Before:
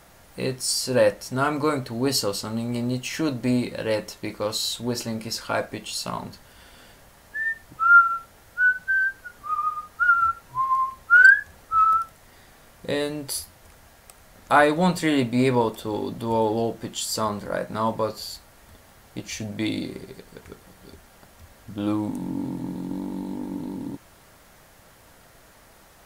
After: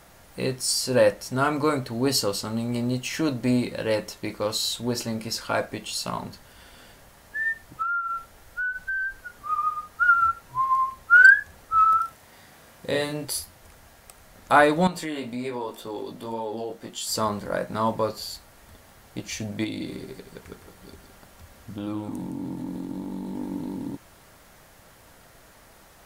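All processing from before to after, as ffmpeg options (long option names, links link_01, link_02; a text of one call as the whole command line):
ffmpeg -i in.wav -filter_complex "[0:a]asettb=1/sr,asplit=3[link_01][link_02][link_03];[link_01]atrim=end=7.824[link_04];[link_02]atrim=start=7.82:end=9.19,asetpts=PTS-STARTPTS,afade=type=in:duration=0.004:curve=qsin,afade=type=out:start_time=1.366:duration=0.004:curve=qsin,acompressor=threshold=-26dB:ratio=6:attack=3.2:release=140:knee=1:detection=peak,asubboost=boost=7:cutoff=70[link_05];[link_03]atrim=start=9.186[link_06];[link_04][link_05]acrossfade=duration=0.004:curve1=hsin:curve2=qsin[link_07];[link_07][link_06]acrossfade=duration=0.004:curve1=qsin:curve2=hsin,asettb=1/sr,asplit=3[link_08][link_09][link_10];[link_08]atrim=end=11.954[link_11];[link_09]atrim=start=11.95:end=13.25,asetpts=PTS-STARTPTS,afade=type=in:duration=0.004:curve=qsin,afade=type=out:start_time=1.296:duration=0.004:curve=qsin,highpass=62,bandreject=frequency=60:width_type=h:width=6,bandreject=frequency=120:width_type=h:width=6,bandreject=frequency=180:width_type=h:width=6,bandreject=frequency=240:width_type=h:width=6,bandreject=frequency=300:width_type=h:width=6,bandreject=frequency=360:width_type=h:width=6,bandreject=frequency=420:width_type=h:width=6,bandreject=frequency=480:width_type=h:width=6,asplit=2[link_12][link_13];[link_13]adelay=40,volume=-4.5dB[link_14];[link_12][link_14]amix=inputs=2:normalize=0,atrim=end_sample=57330[link_15];[link_10]atrim=start=13.246[link_16];[link_11][link_15]acrossfade=duration=0.004:curve1=hsin:curve2=qsin[link_17];[link_17][link_16]acrossfade=duration=0.004:curve1=qsin:curve2=hsin,asettb=1/sr,asplit=3[link_18][link_19][link_20];[link_18]atrim=end=14.874[link_21];[link_19]atrim=start=14.87:end=17.07,asetpts=PTS-STARTPTS,afade=type=in:duration=0.004:curve=qsin,afade=type=out:start_time=2.196:duration=0.004:curve=qsin,flanger=delay=16.5:depth=3.4:speed=1.9,acompressor=threshold=-27dB:ratio=3:attack=3.2:release=140:knee=1:detection=peak,equalizer=frequency=82:width_type=o:width=1.6:gain=-12.5[link_22];[link_20]atrim=start=17.066[link_23];[link_21][link_22]acrossfade=duration=0.004:curve1=hsin:curve2=qsin[link_24];[link_24][link_23]acrossfade=duration=0.004:curve1=qsin:curve2=hsin,asettb=1/sr,asplit=3[link_25][link_26][link_27];[link_25]atrim=end=19.644[link_28];[link_26]atrim=start=19.64:end=23.35,asetpts=PTS-STARTPTS,afade=type=in:duration=0.004:curve=qsin,afade=type=out:start_time=3.706:duration=0.004:curve=qsin,acompressor=threshold=-30dB:ratio=2.5:attack=3.2:release=140:knee=1:detection=peak,aecho=1:1:163:0.355,atrim=end_sample=163611[link_29];[link_27]atrim=start=23.346[link_30];[link_28][link_29]acrossfade=duration=0.004:curve1=hsin:curve2=qsin[link_31];[link_31][link_30]acrossfade=duration=0.004:curve1=qsin:curve2=hsin" out.wav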